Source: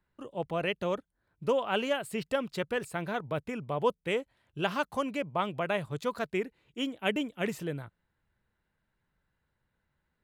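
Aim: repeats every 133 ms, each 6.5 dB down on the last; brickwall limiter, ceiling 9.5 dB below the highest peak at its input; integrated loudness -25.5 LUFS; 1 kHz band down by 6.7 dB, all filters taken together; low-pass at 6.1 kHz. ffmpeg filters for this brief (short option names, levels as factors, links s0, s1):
-af "lowpass=6100,equalizer=f=1000:t=o:g=-9,alimiter=level_in=1.33:limit=0.0631:level=0:latency=1,volume=0.75,aecho=1:1:133|266|399|532|665|798:0.473|0.222|0.105|0.0491|0.0231|0.0109,volume=3.76"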